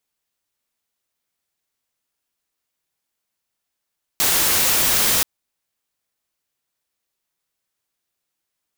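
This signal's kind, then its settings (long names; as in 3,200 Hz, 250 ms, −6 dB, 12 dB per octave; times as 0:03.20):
noise white, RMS −17.5 dBFS 1.03 s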